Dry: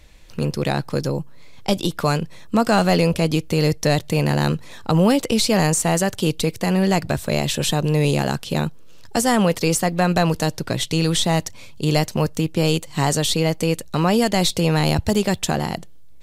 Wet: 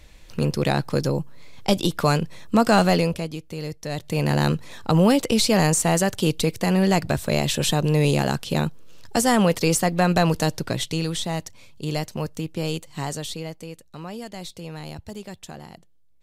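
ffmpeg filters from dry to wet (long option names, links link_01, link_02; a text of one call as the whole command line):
ffmpeg -i in.wav -af "volume=12dB,afade=type=out:start_time=2.8:duration=0.5:silence=0.223872,afade=type=in:start_time=3.88:duration=0.48:silence=0.251189,afade=type=out:start_time=10.56:duration=0.58:silence=0.446684,afade=type=out:start_time=12.84:duration=0.86:silence=0.334965" out.wav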